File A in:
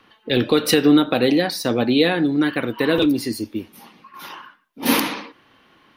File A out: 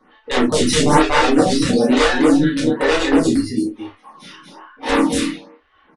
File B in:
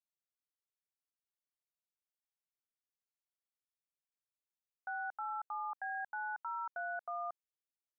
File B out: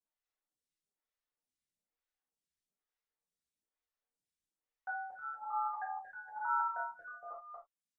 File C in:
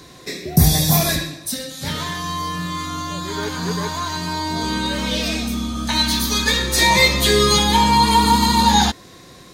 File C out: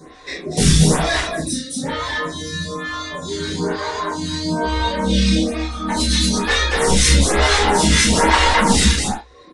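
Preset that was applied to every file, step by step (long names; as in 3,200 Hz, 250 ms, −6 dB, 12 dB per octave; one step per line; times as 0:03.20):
high-shelf EQ 5,000 Hz +2 dB
mains-hum notches 60/120/180/240/300/360/420 Hz
wrap-around overflow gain 9.5 dB
loudspeakers that aren't time-aligned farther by 11 metres −5 dB, 81 metres −2 dB, 92 metres −9 dB
downsampling to 22,050 Hz
reverb reduction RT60 0.8 s
spectral tilt −1.5 dB per octave
reverb whose tail is shaped and stops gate 100 ms falling, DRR −5 dB
phaser with staggered stages 1.1 Hz
level −1.5 dB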